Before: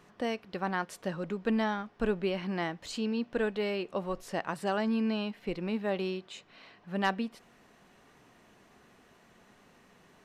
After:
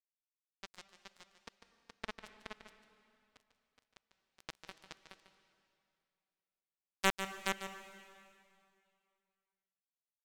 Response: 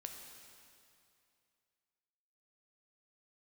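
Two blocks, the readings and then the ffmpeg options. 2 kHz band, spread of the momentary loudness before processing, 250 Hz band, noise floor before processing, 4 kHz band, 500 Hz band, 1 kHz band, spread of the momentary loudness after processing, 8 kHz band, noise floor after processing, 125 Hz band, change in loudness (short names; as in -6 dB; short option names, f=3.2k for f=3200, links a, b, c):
-6.0 dB, 7 LU, -21.0 dB, -62 dBFS, -5.0 dB, -17.0 dB, -9.5 dB, 24 LU, +1.5 dB, under -85 dBFS, -16.5 dB, -7.5 dB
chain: -filter_complex "[0:a]acrusher=bits=2:mix=0:aa=0.5,aecho=1:1:421:0.562,asplit=2[a][b];[1:a]atrim=start_sample=2205,adelay=147[c];[b][c]afir=irnorm=-1:irlink=0,volume=-5dB[d];[a][d]amix=inputs=2:normalize=0,volume=6dB"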